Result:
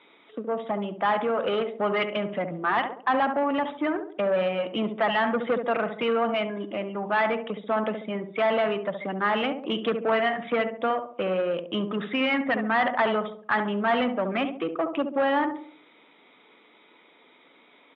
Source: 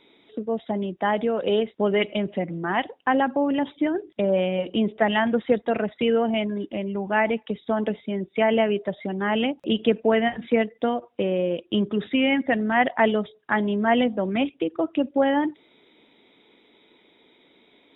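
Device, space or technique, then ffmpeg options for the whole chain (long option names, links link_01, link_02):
overdrive pedal into a guitar cabinet: -filter_complex "[0:a]asplit=2[link_01][link_02];[link_02]adelay=69,lowpass=frequency=1000:poles=1,volume=-8dB,asplit=2[link_03][link_04];[link_04]adelay=69,lowpass=frequency=1000:poles=1,volume=0.48,asplit=2[link_05][link_06];[link_06]adelay=69,lowpass=frequency=1000:poles=1,volume=0.48,asplit=2[link_07][link_08];[link_08]adelay=69,lowpass=frequency=1000:poles=1,volume=0.48,asplit=2[link_09][link_10];[link_10]adelay=69,lowpass=frequency=1000:poles=1,volume=0.48,asplit=2[link_11][link_12];[link_12]adelay=69,lowpass=frequency=1000:poles=1,volume=0.48[link_13];[link_01][link_03][link_05][link_07][link_09][link_11][link_13]amix=inputs=7:normalize=0,asplit=2[link_14][link_15];[link_15]highpass=frequency=720:poles=1,volume=20dB,asoftclip=type=tanh:threshold=-5.5dB[link_16];[link_14][link_16]amix=inputs=2:normalize=0,lowpass=frequency=3100:poles=1,volume=-6dB,highpass=110,equalizer=frequency=160:width_type=q:width=4:gain=4,equalizer=frequency=380:width_type=q:width=4:gain=-4,equalizer=frequency=1200:width_type=q:width=4:gain=8,lowpass=frequency=3400:width=0.5412,lowpass=frequency=3400:width=1.3066,volume=-9dB"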